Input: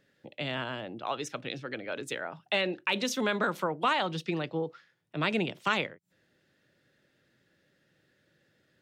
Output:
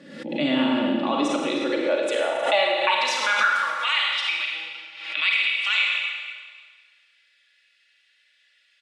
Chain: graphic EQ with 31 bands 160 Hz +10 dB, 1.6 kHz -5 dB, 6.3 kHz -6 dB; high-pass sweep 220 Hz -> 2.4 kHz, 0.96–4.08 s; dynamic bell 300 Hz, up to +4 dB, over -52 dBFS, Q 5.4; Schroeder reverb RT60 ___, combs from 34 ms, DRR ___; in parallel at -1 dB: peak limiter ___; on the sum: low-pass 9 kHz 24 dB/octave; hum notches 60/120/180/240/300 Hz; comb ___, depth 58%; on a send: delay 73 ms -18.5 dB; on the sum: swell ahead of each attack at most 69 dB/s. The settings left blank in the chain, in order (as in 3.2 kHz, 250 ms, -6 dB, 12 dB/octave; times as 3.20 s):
1.6 s, -0.5 dB, -22 dBFS, 3.5 ms